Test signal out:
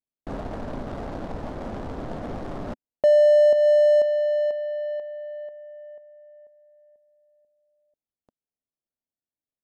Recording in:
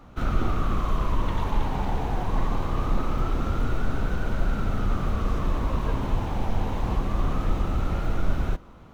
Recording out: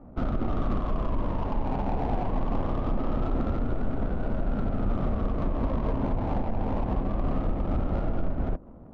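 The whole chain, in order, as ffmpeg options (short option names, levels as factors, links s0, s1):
-af "alimiter=limit=0.119:level=0:latency=1:release=159,equalizer=f=250:t=o:w=0.67:g=6,equalizer=f=630:t=o:w=0.67:g=7,equalizer=f=2500:t=o:w=0.67:g=-11,adynamicsmooth=sensitivity=3:basefreq=600"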